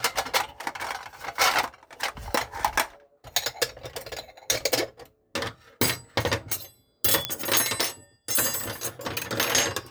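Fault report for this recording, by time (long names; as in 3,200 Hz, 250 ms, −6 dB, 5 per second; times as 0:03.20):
0:07.25: click −7 dBFS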